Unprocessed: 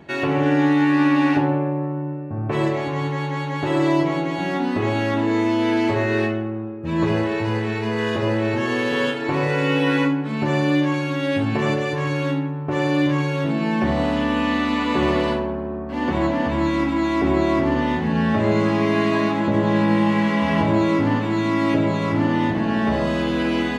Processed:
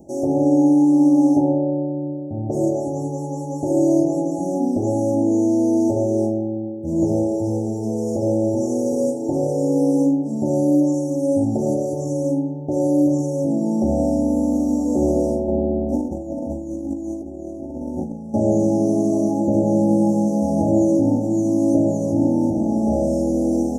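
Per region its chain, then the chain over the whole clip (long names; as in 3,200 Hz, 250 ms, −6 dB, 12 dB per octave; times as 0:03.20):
0:15.48–0:18.34: parametric band 2,800 Hz −9.5 dB 1.3 octaves + compressor whose output falls as the input rises −26 dBFS, ratio −0.5
whole clip: Chebyshev band-stop filter 780–5,700 Hz, order 5; high-shelf EQ 3,400 Hz +8.5 dB; comb filter 3.5 ms, depth 42%; level +1.5 dB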